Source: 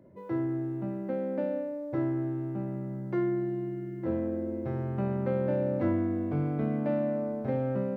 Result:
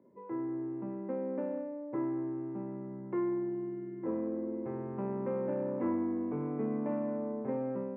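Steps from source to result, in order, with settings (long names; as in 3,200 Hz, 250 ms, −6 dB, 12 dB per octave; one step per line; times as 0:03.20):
automatic gain control gain up to 3.5 dB
soft clipping −17 dBFS, distortion −22 dB
loudspeaker in its box 200–2,300 Hz, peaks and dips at 240 Hz +6 dB, 430 Hz +7 dB, 650 Hz −5 dB, 1,000 Hz +8 dB, 1,500 Hz −5 dB
level −8 dB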